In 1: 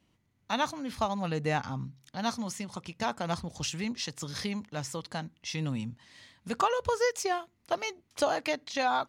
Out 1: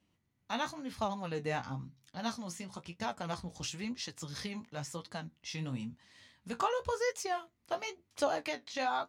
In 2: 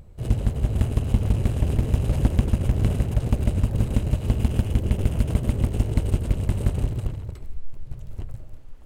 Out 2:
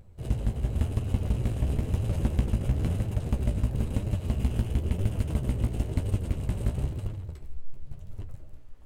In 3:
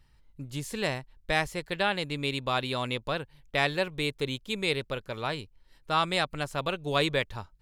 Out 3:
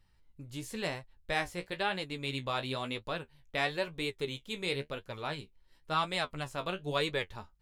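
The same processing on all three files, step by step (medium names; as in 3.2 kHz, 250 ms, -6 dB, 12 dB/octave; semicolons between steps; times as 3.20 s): flange 0.98 Hz, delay 9.1 ms, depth 9.1 ms, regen +39%; trim -1.5 dB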